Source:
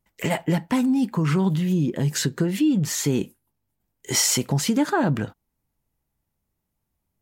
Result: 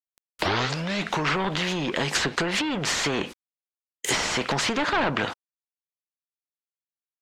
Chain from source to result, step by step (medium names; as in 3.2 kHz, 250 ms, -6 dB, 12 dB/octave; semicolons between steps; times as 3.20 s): tape start-up on the opening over 1.28 s; bass shelf 180 Hz -7 dB; overdrive pedal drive 20 dB, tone 5.4 kHz, clips at -8 dBFS; bit crusher 8-bit; low-pass that closes with the level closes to 1.8 kHz, closed at -15.5 dBFS; spectrum-flattening compressor 2:1